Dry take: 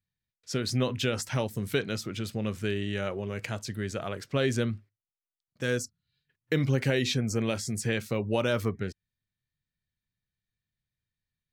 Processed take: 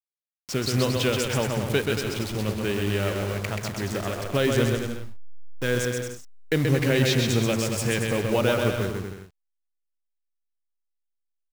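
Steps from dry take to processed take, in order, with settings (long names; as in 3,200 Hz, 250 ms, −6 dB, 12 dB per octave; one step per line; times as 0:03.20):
hold until the input has moved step −36 dBFS
parametric band 190 Hz −2.5 dB 0.85 octaves
on a send: bouncing-ball delay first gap 130 ms, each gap 0.75×, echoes 5
on the sum: level +4 dB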